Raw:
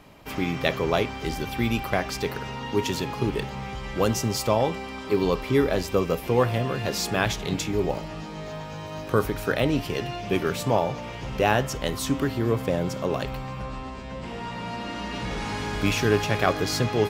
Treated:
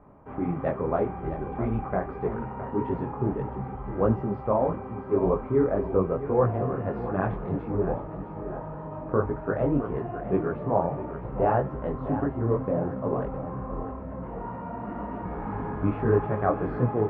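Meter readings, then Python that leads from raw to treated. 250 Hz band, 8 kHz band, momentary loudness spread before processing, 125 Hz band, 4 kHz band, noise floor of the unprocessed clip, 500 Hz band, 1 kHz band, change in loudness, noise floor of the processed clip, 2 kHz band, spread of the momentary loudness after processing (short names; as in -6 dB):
-1.0 dB, under -40 dB, 12 LU, -1.0 dB, under -30 dB, -37 dBFS, -1.0 dB, -1.5 dB, -2.0 dB, -38 dBFS, -12.0 dB, 11 LU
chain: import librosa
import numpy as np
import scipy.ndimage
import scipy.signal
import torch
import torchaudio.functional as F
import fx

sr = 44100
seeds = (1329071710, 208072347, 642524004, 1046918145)

p1 = scipy.signal.sosfilt(scipy.signal.butter(4, 1300.0, 'lowpass', fs=sr, output='sos'), x)
p2 = p1 + fx.echo_feedback(p1, sr, ms=662, feedback_pct=45, wet_db=-11.0, dry=0)
p3 = fx.detune_double(p2, sr, cents=59)
y = p3 * librosa.db_to_amplitude(2.0)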